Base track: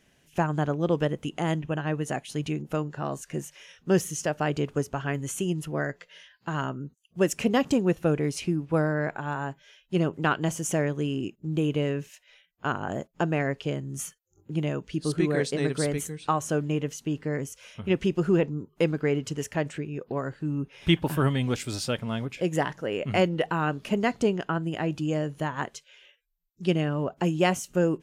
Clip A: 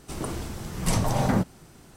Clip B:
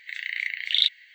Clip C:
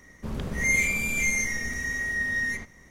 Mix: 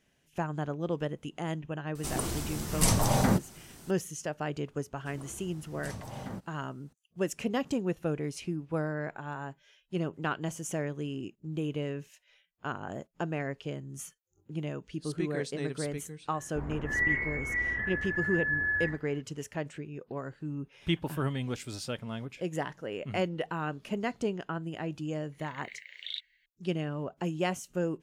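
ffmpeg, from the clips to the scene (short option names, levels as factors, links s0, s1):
-filter_complex "[1:a]asplit=2[s0][s1];[0:a]volume=0.422[s2];[s0]highshelf=f=4400:g=8.5[s3];[s1]highpass=42[s4];[3:a]highpass=f=190:t=q:w=0.5412,highpass=f=190:t=q:w=1.307,lowpass=f=2100:t=q:w=0.5176,lowpass=f=2100:t=q:w=0.7071,lowpass=f=2100:t=q:w=1.932,afreqshift=-160[s5];[s3]atrim=end=1.96,asetpts=PTS-STARTPTS,volume=0.794,afade=t=in:d=0.004:c=hsin,afade=t=out:st=1.956:d=0.004:c=hsin,adelay=1950[s6];[s4]atrim=end=1.96,asetpts=PTS-STARTPTS,volume=0.141,afade=t=in:d=0.004:c=hsin,afade=t=out:st=1.956:d=0.004:c=hsin,adelay=219177S[s7];[s5]atrim=end=2.9,asetpts=PTS-STARTPTS,volume=0.891,afade=t=in:d=0.004:c=hsin,afade=t=out:st=2.896:d=0.004:c=hsin,adelay=16320[s8];[2:a]atrim=end=1.14,asetpts=PTS-STARTPTS,volume=0.133,afade=t=in:d=0.004:c=hsin,afade=t=out:st=1.136:d=0.004:c=hsin,adelay=25320[s9];[s2][s6][s7][s8][s9]amix=inputs=5:normalize=0"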